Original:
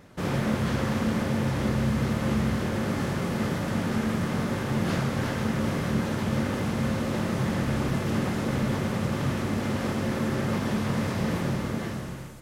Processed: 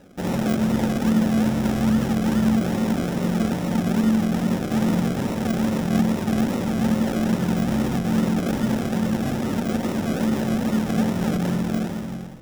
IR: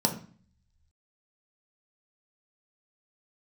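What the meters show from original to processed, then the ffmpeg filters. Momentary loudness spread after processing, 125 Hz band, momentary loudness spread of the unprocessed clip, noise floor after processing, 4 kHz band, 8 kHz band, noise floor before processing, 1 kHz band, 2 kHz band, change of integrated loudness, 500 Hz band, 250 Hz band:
4 LU, +1.5 dB, 2 LU, -29 dBFS, +2.0 dB, +4.0 dB, -33 dBFS, +2.5 dB, 0.0 dB, +5.0 dB, +3.0 dB, +7.5 dB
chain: -filter_complex "[0:a]acrusher=samples=38:mix=1:aa=0.000001:lfo=1:lforange=22.8:lforate=2.4,asplit=2[s0][s1];[1:a]atrim=start_sample=2205,lowpass=6200[s2];[s1][s2]afir=irnorm=-1:irlink=0,volume=0.126[s3];[s0][s3]amix=inputs=2:normalize=0"

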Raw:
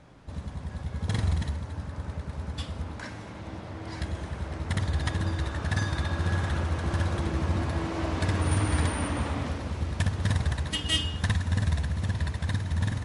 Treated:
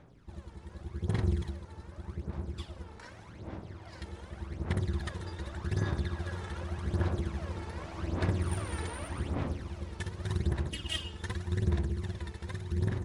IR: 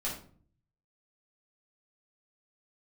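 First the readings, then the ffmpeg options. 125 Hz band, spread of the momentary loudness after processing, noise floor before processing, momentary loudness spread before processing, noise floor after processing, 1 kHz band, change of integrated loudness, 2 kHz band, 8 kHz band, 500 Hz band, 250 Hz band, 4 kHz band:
-6.0 dB, 14 LU, -41 dBFS, 11 LU, -51 dBFS, -8.0 dB, -6.0 dB, -8.5 dB, -9.0 dB, -4.0 dB, -5.0 dB, -9.5 dB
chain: -af "aphaser=in_gain=1:out_gain=1:delay=2.3:decay=0.65:speed=0.85:type=sinusoidal,tremolo=f=270:d=0.667,volume=0.376"

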